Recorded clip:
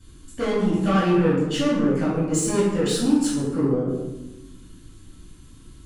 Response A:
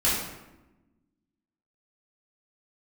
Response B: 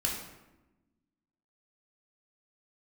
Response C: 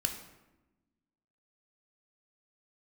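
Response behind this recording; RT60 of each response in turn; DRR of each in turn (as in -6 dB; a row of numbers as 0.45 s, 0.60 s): A; 1.0 s, 1.0 s, 1.0 s; -9.5 dB, -2.5 dB, 4.0 dB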